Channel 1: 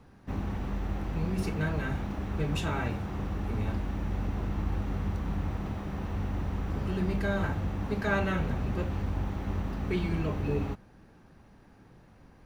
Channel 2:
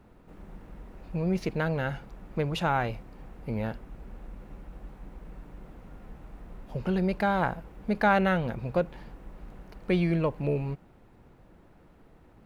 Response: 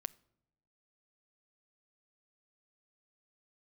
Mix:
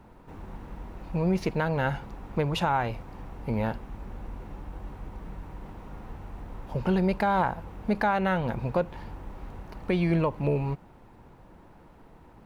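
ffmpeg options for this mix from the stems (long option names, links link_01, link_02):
-filter_complex "[0:a]highpass=60,acompressor=threshold=-31dB:ratio=6,volume=-11.5dB[link_01];[1:a]alimiter=limit=-19.5dB:level=0:latency=1:release=253,volume=3dB[link_02];[link_01][link_02]amix=inputs=2:normalize=0,equalizer=frequency=930:width=3.3:gain=7"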